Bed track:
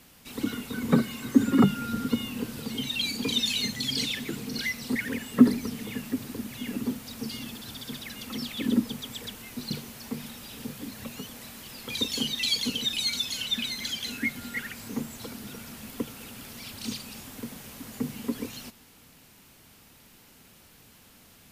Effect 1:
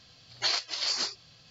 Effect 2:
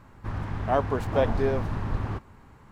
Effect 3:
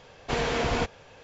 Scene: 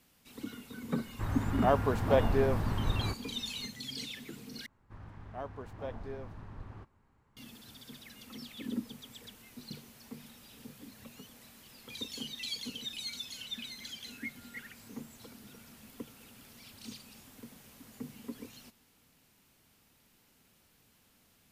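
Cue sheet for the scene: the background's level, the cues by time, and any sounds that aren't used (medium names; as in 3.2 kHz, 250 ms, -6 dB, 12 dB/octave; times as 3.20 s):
bed track -12 dB
0.95 s: add 2 -2.5 dB
4.66 s: replace with 2 -17.5 dB
not used: 1, 3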